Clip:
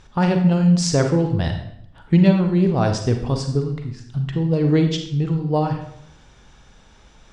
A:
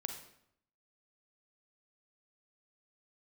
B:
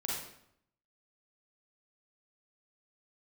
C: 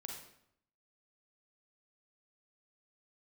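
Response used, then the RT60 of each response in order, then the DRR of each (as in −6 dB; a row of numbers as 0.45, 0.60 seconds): A; 0.70, 0.70, 0.70 seconds; 4.5, −5.0, 0.0 decibels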